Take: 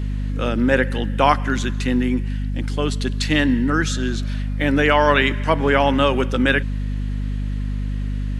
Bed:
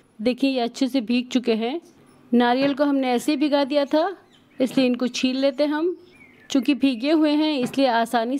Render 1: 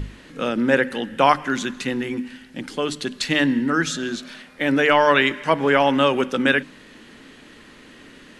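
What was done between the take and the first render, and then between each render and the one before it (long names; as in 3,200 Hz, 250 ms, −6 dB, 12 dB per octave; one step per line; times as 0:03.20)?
mains-hum notches 50/100/150/200/250/300 Hz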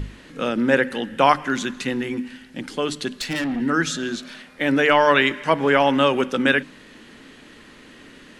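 0:03.15–0:03.61: tube saturation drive 21 dB, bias 0.3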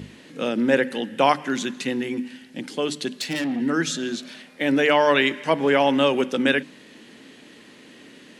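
high-pass filter 150 Hz 12 dB per octave
parametric band 1,300 Hz −6.5 dB 0.91 octaves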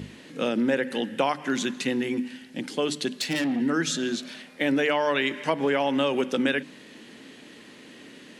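downward compressor 6 to 1, threshold −20 dBFS, peak gain reduction 8.5 dB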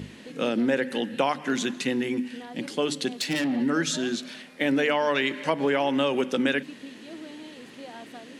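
mix in bed −23.5 dB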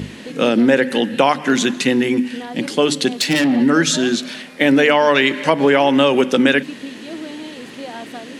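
level +10.5 dB
brickwall limiter −1 dBFS, peak gain reduction 1 dB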